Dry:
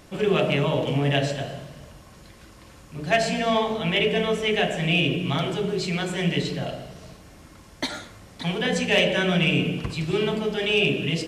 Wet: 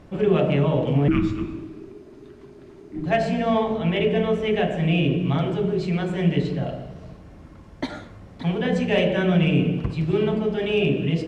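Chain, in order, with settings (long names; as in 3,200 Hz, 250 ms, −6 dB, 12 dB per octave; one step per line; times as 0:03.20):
low-pass filter 1,400 Hz 6 dB per octave
low-shelf EQ 440 Hz +5 dB
0:01.08–0:03.06: frequency shifter −460 Hz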